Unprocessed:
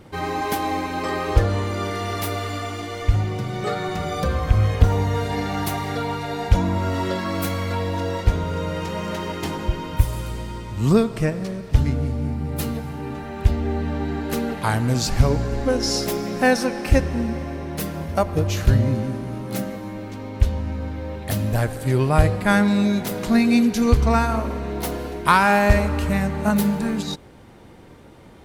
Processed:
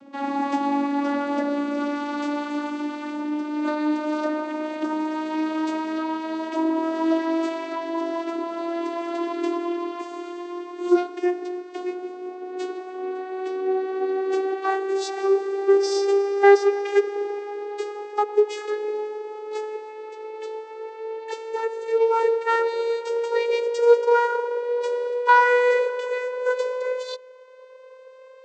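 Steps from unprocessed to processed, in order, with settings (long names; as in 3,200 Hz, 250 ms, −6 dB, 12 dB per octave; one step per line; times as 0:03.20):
vocoder with a gliding carrier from C#4, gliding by +11 semitones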